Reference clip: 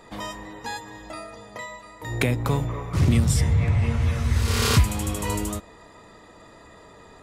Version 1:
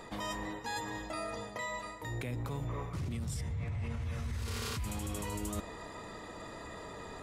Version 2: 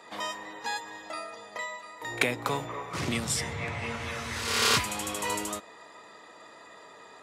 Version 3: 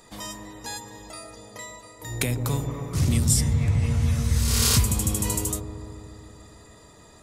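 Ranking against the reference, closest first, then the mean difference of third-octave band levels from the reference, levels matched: 3, 2, 1; 4.0, 6.0, 8.0 dB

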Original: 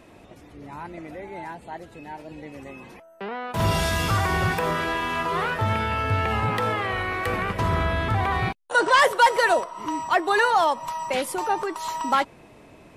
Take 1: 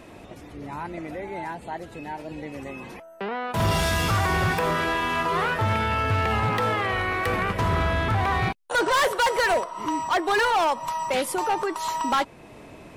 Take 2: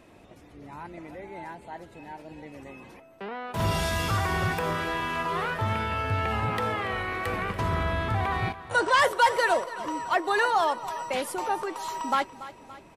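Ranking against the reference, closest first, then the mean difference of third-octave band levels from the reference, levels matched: 2, 1; 1.5, 3.0 dB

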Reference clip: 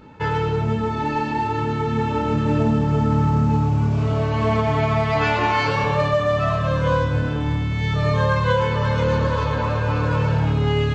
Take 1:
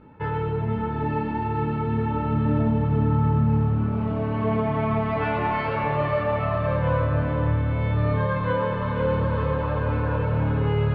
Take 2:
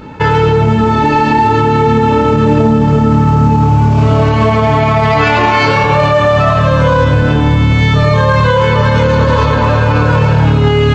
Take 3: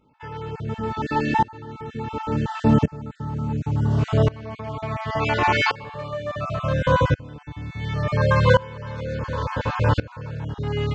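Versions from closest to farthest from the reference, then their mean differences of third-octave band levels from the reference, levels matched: 2, 1, 3; 1.5, 4.5, 6.5 dB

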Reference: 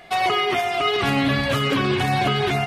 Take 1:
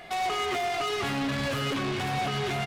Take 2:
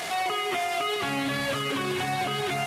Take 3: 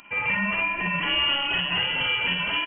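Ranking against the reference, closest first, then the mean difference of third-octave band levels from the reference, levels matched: 1, 2, 3; 3.5, 4.5, 13.5 dB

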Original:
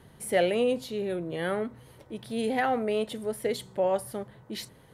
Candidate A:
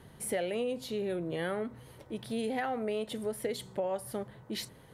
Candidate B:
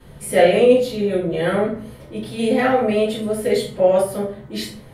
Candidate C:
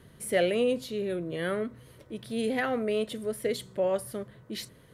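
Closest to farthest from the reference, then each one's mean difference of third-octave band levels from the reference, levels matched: C, A, B; 1.0, 3.5, 4.5 dB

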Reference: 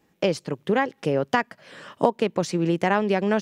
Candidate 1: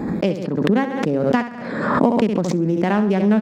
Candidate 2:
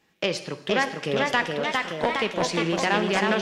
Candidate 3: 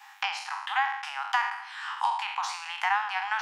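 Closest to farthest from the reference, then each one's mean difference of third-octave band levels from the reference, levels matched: 1, 2, 3; 7.0, 9.5, 17.0 dB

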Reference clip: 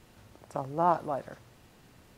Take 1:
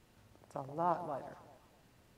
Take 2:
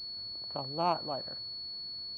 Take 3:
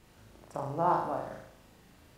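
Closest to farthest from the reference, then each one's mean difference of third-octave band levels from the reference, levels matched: 1, 3, 2; 1.5, 2.5, 6.0 dB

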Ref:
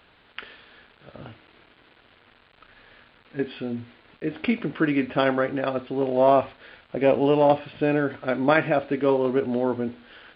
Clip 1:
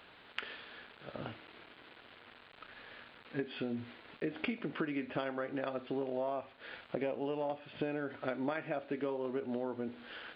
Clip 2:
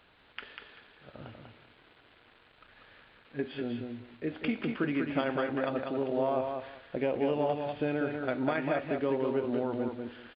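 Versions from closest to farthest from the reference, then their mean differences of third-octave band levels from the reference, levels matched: 2, 1; 4.0, 5.5 dB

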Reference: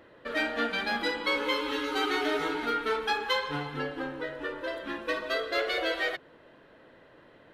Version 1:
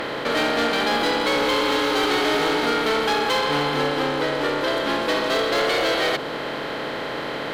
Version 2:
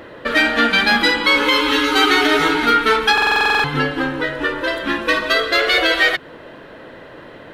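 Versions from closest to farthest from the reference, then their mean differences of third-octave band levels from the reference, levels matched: 2, 1; 2.5, 8.5 dB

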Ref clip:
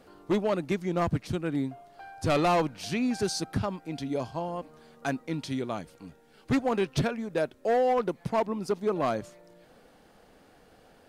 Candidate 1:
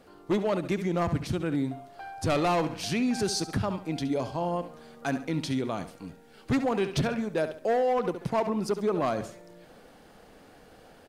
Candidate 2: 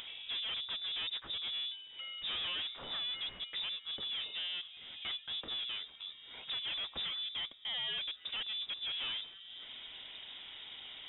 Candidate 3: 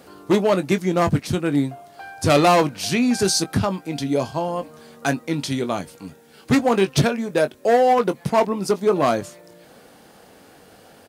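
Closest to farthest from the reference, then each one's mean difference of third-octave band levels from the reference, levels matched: 3, 1, 2; 2.5, 3.5, 13.5 dB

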